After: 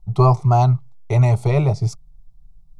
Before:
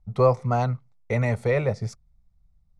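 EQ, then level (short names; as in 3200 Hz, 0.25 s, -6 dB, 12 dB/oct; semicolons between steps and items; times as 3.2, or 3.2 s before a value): low shelf 74 Hz +10.5 dB; fixed phaser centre 340 Hz, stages 8; +8.5 dB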